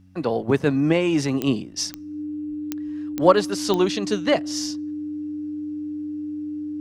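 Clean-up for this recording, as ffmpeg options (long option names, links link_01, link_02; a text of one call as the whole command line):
ffmpeg -i in.wav -af "adeclick=threshold=4,bandreject=frequency=92.9:width_type=h:width=4,bandreject=frequency=185.8:width_type=h:width=4,bandreject=frequency=278.7:width_type=h:width=4,bandreject=frequency=300:width=30" out.wav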